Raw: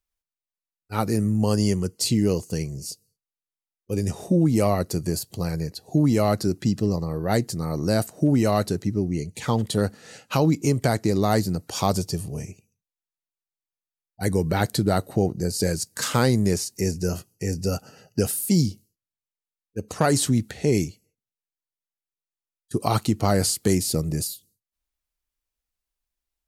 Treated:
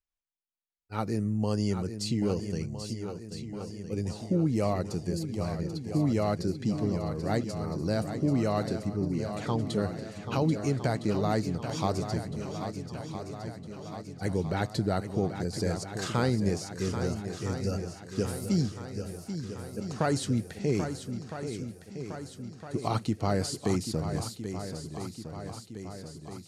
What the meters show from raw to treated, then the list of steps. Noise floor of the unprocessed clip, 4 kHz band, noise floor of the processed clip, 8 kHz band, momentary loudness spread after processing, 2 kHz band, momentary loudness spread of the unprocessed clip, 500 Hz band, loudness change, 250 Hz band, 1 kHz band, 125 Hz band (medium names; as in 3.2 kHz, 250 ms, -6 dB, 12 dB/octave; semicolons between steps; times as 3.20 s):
under -85 dBFS, -8.0 dB, -50 dBFS, -12.0 dB, 12 LU, -6.5 dB, 10 LU, -6.0 dB, -7.5 dB, -6.0 dB, -6.0 dB, -6.0 dB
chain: distance through air 62 m; shuffle delay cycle 1310 ms, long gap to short 1.5:1, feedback 56%, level -9 dB; trim -7 dB